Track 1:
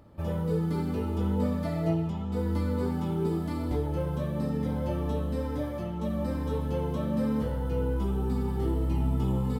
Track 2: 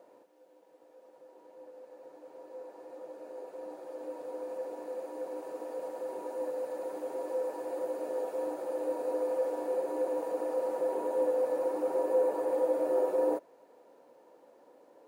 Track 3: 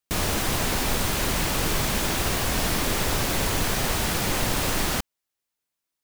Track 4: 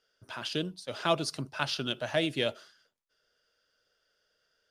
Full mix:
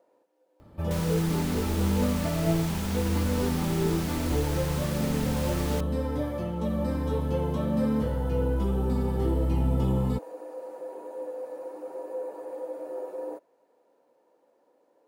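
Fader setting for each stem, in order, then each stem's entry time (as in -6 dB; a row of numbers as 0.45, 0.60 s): +2.0 dB, -7.5 dB, -12.0 dB, off; 0.60 s, 0.00 s, 0.80 s, off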